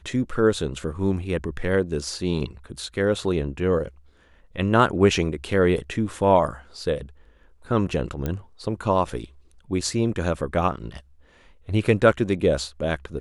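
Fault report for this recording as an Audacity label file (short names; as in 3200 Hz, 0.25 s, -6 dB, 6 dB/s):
8.260000	8.260000	pop -14 dBFS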